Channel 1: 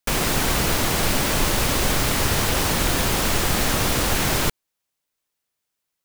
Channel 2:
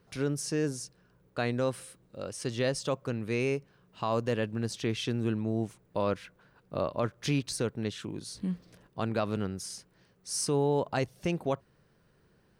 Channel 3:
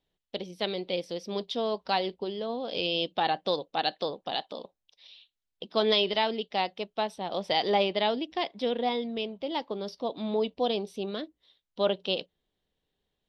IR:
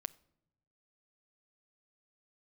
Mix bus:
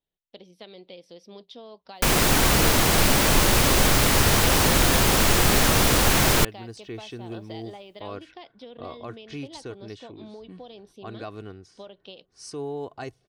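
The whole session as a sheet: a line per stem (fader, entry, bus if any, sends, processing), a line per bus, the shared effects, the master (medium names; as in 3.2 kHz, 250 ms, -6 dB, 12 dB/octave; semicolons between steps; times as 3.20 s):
+2.0 dB, 1.95 s, no send, none
-7.0 dB, 2.05 s, no send, level-controlled noise filter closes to 1.2 kHz, open at -25.5 dBFS; comb 2.7 ms, depth 53%
-9.5 dB, 0.00 s, no send, compression 10:1, threshold -30 dBFS, peak gain reduction 10.5 dB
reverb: none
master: none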